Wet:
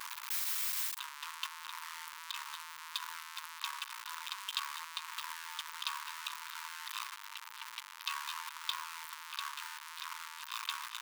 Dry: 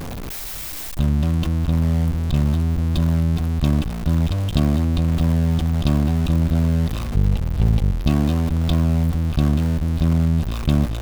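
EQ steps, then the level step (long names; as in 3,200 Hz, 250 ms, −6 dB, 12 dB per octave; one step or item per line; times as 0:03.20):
linear-phase brick-wall high-pass 880 Hz
−4.0 dB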